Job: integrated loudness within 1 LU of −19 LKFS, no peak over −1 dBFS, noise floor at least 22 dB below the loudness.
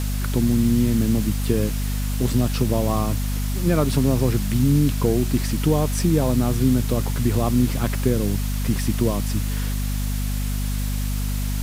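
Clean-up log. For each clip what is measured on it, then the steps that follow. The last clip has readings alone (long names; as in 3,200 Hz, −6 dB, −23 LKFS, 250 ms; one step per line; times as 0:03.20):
mains hum 50 Hz; hum harmonics up to 250 Hz; level of the hum −21 dBFS; background noise floor −24 dBFS; target noise floor −44 dBFS; integrated loudness −22.0 LKFS; sample peak −6.0 dBFS; target loudness −19.0 LKFS
→ mains-hum notches 50/100/150/200/250 Hz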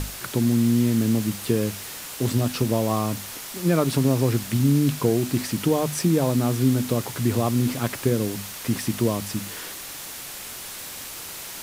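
mains hum none found; background noise floor −37 dBFS; target noise floor −46 dBFS
→ broadband denoise 9 dB, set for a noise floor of −37 dBFS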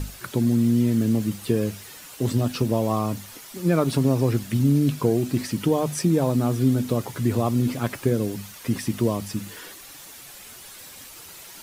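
background noise floor −43 dBFS; target noise floor −46 dBFS
→ broadband denoise 6 dB, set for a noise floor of −43 dBFS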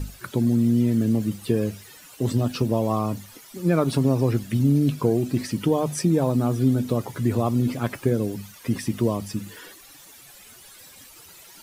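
background noise floor −48 dBFS; integrated loudness −23.5 LKFS; sample peak −7.5 dBFS; target loudness −19.0 LKFS
→ level +4.5 dB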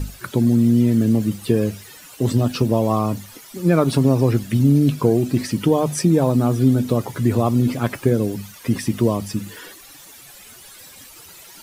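integrated loudness −19.0 LKFS; sample peak −3.0 dBFS; background noise floor −43 dBFS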